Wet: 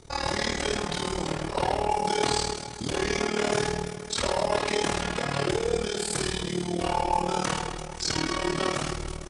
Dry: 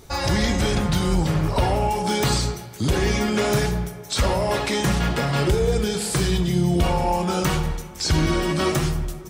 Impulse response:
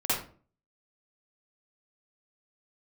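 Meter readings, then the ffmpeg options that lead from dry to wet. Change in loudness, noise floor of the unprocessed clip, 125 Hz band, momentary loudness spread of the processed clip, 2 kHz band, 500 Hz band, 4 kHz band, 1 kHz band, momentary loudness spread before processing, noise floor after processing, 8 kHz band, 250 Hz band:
-5.5 dB, -38 dBFS, -12.5 dB, 5 LU, -3.5 dB, -4.0 dB, -3.0 dB, -2.5 dB, 4 LU, -38 dBFS, -3.0 dB, -8.5 dB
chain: -filter_complex "[0:a]acrossover=split=270|6400[a][b][c];[a]acompressor=threshold=-34dB:ratio=6[d];[d][b][c]amix=inputs=3:normalize=0,aresample=22050,aresample=44100,aecho=1:1:50|130|258|462.8|790.5:0.631|0.398|0.251|0.158|0.1,tremolo=f=38:d=0.857,volume=-1.5dB"

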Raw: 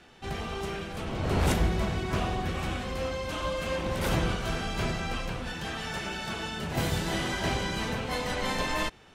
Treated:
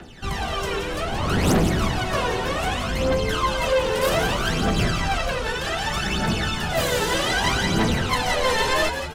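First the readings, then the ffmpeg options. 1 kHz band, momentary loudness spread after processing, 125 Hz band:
+9.5 dB, 6 LU, +5.5 dB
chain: -filter_complex "[0:a]bandreject=f=2.3k:w=17,acrossover=split=150|540|4100[a][b][c][d];[a]acompressor=threshold=-42dB:ratio=6[e];[e][b][c][d]amix=inputs=4:normalize=0,aphaser=in_gain=1:out_gain=1:delay=2.3:decay=0.73:speed=0.64:type=triangular,asoftclip=type=tanh:threshold=-21dB,asplit=5[f][g][h][i][j];[g]adelay=173,afreqshift=-85,volume=-7.5dB[k];[h]adelay=346,afreqshift=-170,volume=-15.7dB[l];[i]adelay=519,afreqshift=-255,volume=-23.9dB[m];[j]adelay=692,afreqshift=-340,volume=-32dB[n];[f][k][l][m][n]amix=inputs=5:normalize=0,volume=7dB"

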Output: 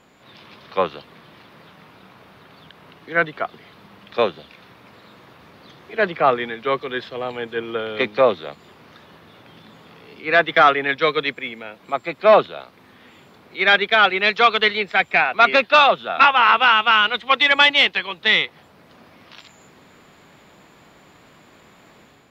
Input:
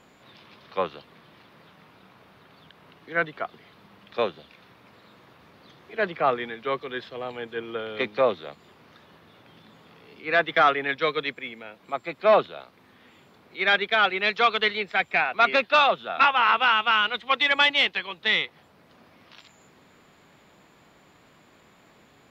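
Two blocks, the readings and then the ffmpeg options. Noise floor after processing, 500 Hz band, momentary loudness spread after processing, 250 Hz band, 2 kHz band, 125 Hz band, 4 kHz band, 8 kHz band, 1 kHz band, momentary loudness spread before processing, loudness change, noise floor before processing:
-51 dBFS, +6.0 dB, 16 LU, +6.0 dB, +6.0 dB, +6.0 dB, +6.0 dB, n/a, +6.0 dB, 16 LU, +6.0 dB, -57 dBFS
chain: -af "dynaudnorm=f=110:g=5:m=5dB,volume=1.5dB"

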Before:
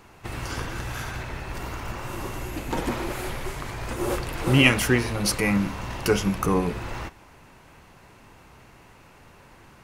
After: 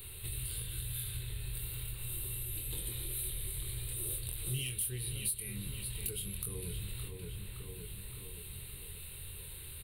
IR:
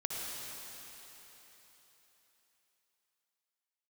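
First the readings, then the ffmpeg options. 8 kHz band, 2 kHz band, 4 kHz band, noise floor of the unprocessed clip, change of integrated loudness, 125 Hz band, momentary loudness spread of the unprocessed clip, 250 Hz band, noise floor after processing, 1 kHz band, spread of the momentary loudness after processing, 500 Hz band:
-2.0 dB, -22.5 dB, -12.5 dB, -52 dBFS, -13.0 dB, -11.0 dB, 14 LU, -24.0 dB, -47 dBFS, -31.0 dB, 10 LU, -22.5 dB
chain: -filter_complex "[0:a]firequalizer=gain_entry='entry(100,0);entry(250,-24);entry(410,-8);entry(680,-25);entry(3800,8);entry(5800,-29);entry(8700,14)':delay=0.05:min_phase=1,asplit=2[a][b];[b]adelay=567,lowpass=f=3.3k:p=1,volume=-11dB,asplit=2[c][d];[d]adelay=567,lowpass=f=3.3k:p=1,volume=0.45,asplit=2[e][f];[f]adelay=567,lowpass=f=3.3k:p=1,volume=0.45,asplit=2[g][h];[h]adelay=567,lowpass=f=3.3k:p=1,volume=0.45,asplit=2[i][j];[j]adelay=567,lowpass=f=3.3k:p=1,volume=0.45[k];[c][e][g][i][k]amix=inputs=5:normalize=0[l];[a][l]amix=inputs=2:normalize=0,acompressor=threshold=-47dB:ratio=3,asplit=2[m][n];[n]adelay=24,volume=-5dB[o];[m][o]amix=inputs=2:normalize=0,aeval=exprs='0.075*(cos(1*acos(clip(val(0)/0.075,-1,1)))-cos(1*PI/2))+0.015*(cos(5*acos(clip(val(0)/0.075,-1,1)))-cos(5*PI/2))':c=same,acrossover=split=390|3000[p][q][r];[q]acompressor=threshold=-58dB:ratio=2[s];[p][s][r]amix=inputs=3:normalize=0,bandreject=f=3.4k:w=21"

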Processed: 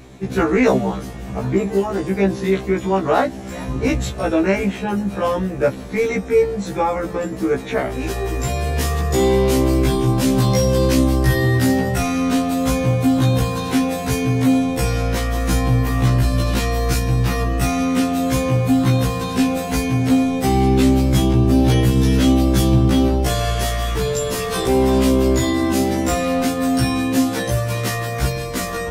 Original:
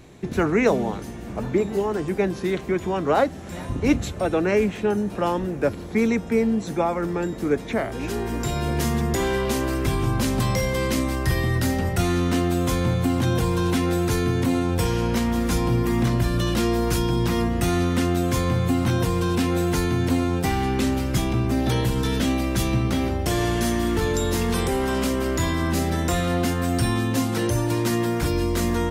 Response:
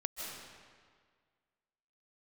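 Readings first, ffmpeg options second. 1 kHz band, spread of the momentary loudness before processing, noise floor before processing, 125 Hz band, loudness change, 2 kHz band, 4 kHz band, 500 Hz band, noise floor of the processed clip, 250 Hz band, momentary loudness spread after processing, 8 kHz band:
+4.0 dB, 3 LU, -34 dBFS, +5.0 dB, +4.5 dB, +3.5 dB, +4.0 dB, +4.5 dB, -29 dBFS, +5.0 dB, 7 LU, +4.0 dB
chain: -af "acontrast=78,afftfilt=real='re*1.73*eq(mod(b,3),0)':imag='im*1.73*eq(mod(b,3),0)':win_size=2048:overlap=0.75"

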